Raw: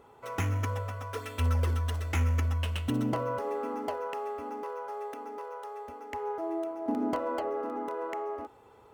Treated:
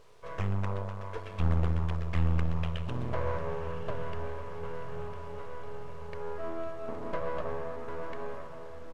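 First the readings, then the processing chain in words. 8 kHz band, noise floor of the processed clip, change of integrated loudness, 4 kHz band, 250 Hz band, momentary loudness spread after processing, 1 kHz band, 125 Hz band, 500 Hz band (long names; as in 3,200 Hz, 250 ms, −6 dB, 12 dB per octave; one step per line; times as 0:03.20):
below −10 dB, −41 dBFS, −2.5 dB, −5.5 dB, −5.0 dB, 14 LU, −5.0 dB, −1.0 dB, −2.5 dB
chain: comb filter 1.8 ms, depth 91%
background noise blue −49 dBFS
half-wave rectification
head-to-tape spacing loss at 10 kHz 21 dB
feedback delay with all-pass diffusion 1,109 ms, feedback 61%, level −10 dB
highs frequency-modulated by the lows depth 0.57 ms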